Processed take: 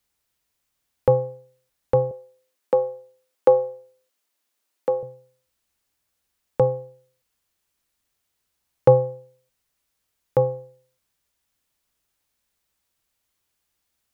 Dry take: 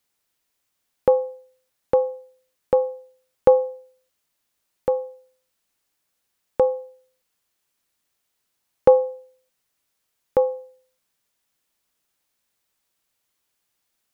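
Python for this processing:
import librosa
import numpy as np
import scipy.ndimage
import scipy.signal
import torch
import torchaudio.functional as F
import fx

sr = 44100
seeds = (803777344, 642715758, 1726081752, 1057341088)

y = fx.octave_divider(x, sr, octaves=2, level_db=3.0)
y = fx.highpass(y, sr, hz=240.0, slope=24, at=(2.11, 5.03))
y = F.gain(torch.from_numpy(y), -1.0).numpy()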